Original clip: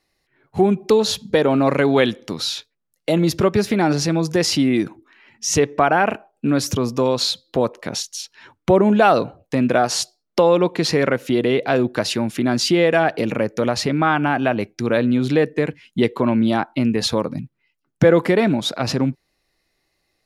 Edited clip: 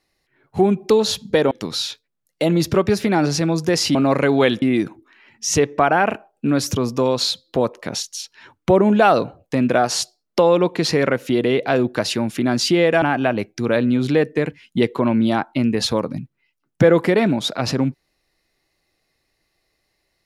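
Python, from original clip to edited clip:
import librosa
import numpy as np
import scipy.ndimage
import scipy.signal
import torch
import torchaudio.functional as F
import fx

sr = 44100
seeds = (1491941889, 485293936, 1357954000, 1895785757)

y = fx.edit(x, sr, fx.move(start_s=1.51, length_s=0.67, to_s=4.62),
    fx.cut(start_s=13.02, length_s=1.21), tone=tone)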